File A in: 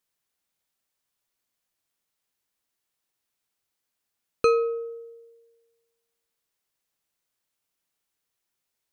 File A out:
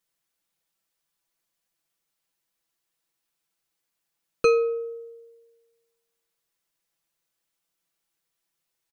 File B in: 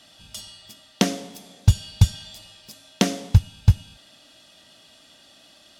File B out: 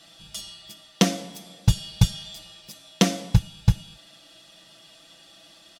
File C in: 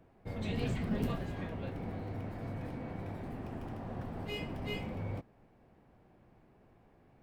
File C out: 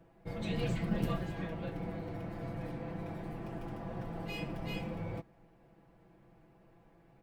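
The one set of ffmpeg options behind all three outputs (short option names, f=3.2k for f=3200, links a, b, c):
-af "aecho=1:1:6:0.74,volume=-1dB"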